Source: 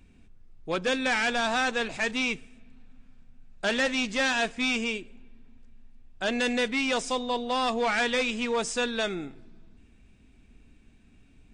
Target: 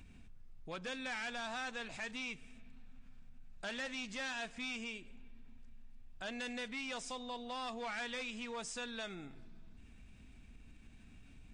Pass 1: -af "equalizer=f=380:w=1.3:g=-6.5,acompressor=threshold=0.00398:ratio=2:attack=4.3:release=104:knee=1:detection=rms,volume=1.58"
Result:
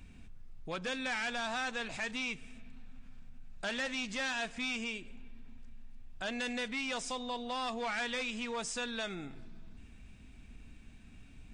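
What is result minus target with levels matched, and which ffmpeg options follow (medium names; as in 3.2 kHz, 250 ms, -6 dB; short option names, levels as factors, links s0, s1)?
compression: peak gain reduction -5.5 dB
-af "equalizer=f=380:w=1.3:g=-6.5,acompressor=threshold=0.00112:ratio=2:attack=4.3:release=104:knee=1:detection=rms,volume=1.58"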